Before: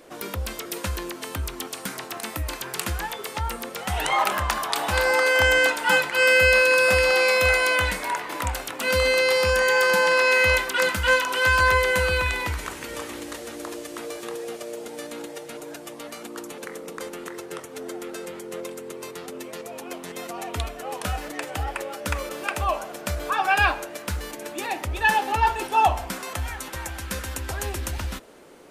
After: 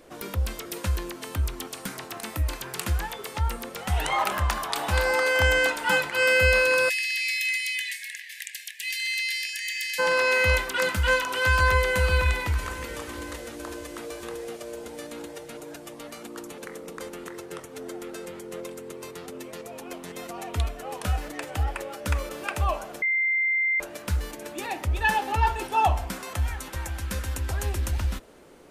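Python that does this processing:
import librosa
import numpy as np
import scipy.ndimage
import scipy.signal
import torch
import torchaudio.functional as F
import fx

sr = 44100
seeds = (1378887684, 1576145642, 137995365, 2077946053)

y = fx.brickwall_highpass(x, sr, low_hz=1600.0, at=(6.88, 9.98), fade=0.02)
y = fx.echo_throw(y, sr, start_s=11.51, length_s=0.41, ms=520, feedback_pct=60, wet_db=-12.0)
y = fx.edit(y, sr, fx.bleep(start_s=23.02, length_s=0.78, hz=2090.0, db=-17.5), tone=tone)
y = fx.low_shelf(y, sr, hz=120.0, db=10.5)
y = y * 10.0 ** (-3.5 / 20.0)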